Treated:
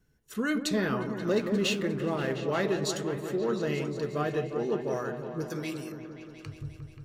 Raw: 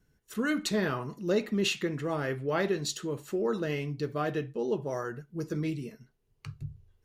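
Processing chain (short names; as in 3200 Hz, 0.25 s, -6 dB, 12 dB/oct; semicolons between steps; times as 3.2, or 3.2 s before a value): 5.5–5.92 tilt +3 dB/oct; repeats that get brighter 0.177 s, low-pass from 750 Hz, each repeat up 1 oct, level -6 dB; 1.3–2.35 backlash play -44.5 dBFS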